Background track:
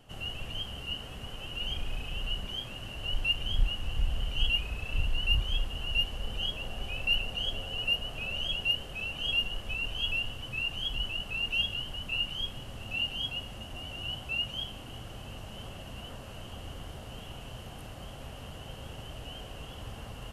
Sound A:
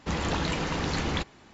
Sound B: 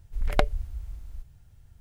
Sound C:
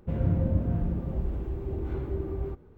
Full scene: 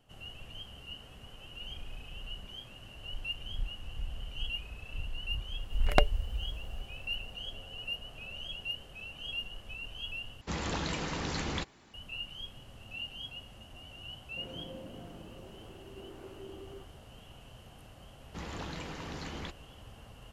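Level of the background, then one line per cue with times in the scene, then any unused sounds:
background track -9 dB
5.59 s: add B -1 dB
10.41 s: replace with A -6.5 dB + treble shelf 4.7 kHz +5.5 dB
14.29 s: add C -9.5 dB + high-pass 330 Hz
18.28 s: add A -12.5 dB

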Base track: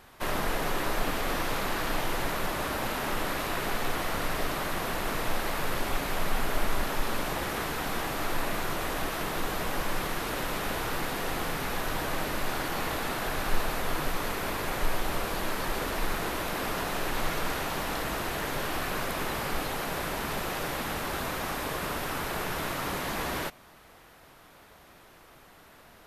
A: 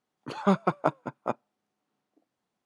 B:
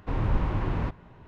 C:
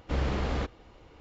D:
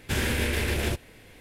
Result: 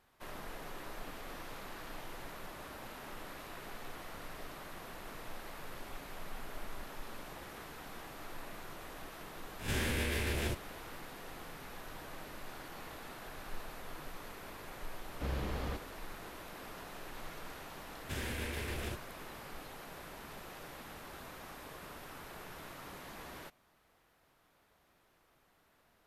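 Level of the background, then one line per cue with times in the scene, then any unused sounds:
base track -16.5 dB
9.59 s: add D -9 dB + reverse spectral sustain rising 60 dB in 0.33 s
15.11 s: add C -8.5 dB
18.00 s: add D -13 dB
not used: A, B

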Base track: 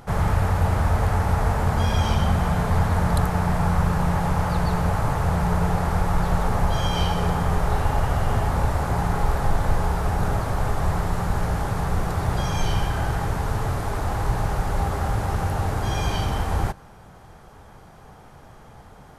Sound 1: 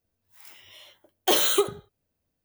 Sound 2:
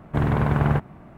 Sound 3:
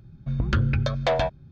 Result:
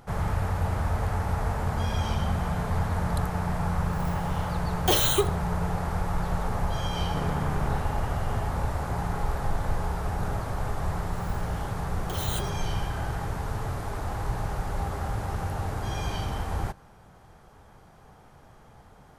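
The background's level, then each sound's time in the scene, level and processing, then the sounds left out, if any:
base track -6.5 dB
3.60 s: add 1 -2 dB
7.00 s: add 2 -14.5 dB + spectral levelling over time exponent 0.4
10.82 s: add 1 -10.5 dB + compressor with a negative ratio -25 dBFS
not used: 3

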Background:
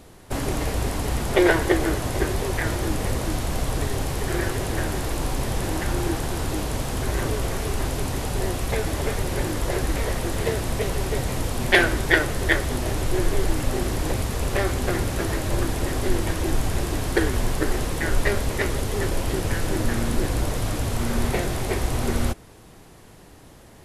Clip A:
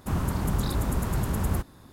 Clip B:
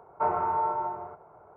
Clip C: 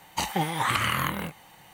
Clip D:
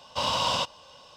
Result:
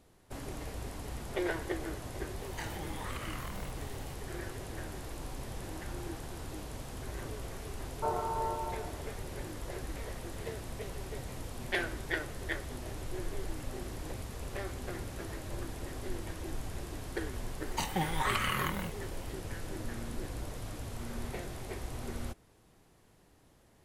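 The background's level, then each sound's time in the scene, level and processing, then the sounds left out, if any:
background -16 dB
2.41 s: add C -2 dB + compression 3:1, threshold -44 dBFS
7.82 s: add B -9.5 dB + peaking EQ 450 Hz +8.5 dB 0.88 oct
17.60 s: add C -7 dB + comb 5.4 ms, depth 34%
not used: A, D

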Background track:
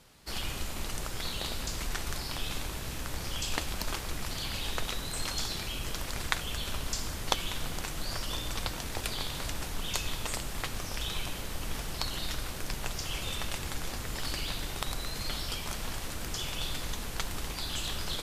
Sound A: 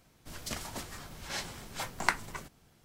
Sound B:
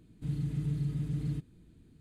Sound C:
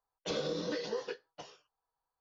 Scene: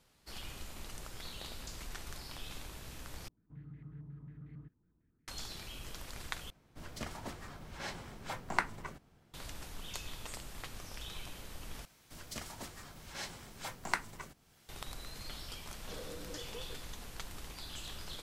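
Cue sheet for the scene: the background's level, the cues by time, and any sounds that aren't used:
background track -10.5 dB
3.28 s: replace with B -17 dB + step-sequenced low-pass 11 Hz 960–2000 Hz
6.50 s: replace with A -1.5 dB + treble shelf 3.4 kHz -10.5 dB
11.85 s: replace with A -5.5 dB + tape noise reduction on one side only encoder only
15.62 s: add C -12.5 dB

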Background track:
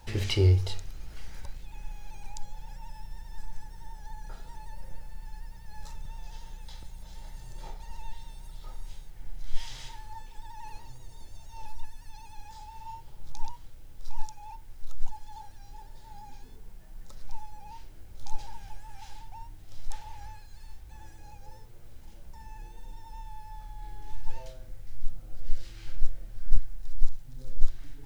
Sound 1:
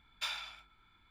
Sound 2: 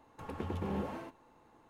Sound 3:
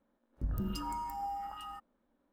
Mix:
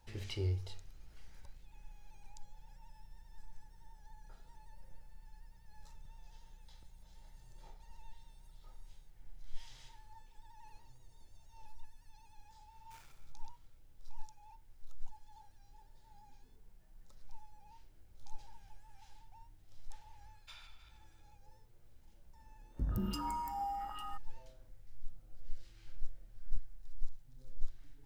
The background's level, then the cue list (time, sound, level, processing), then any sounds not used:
background track -14 dB
12.69 s: add 1 -15 dB + dead-time distortion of 0.14 ms
20.26 s: add 1 -17.5 dB + backward echo that repeats 157 ms, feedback 50%, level -9 dB
22.38 s: add 3 -0.5 dB
not used: 2

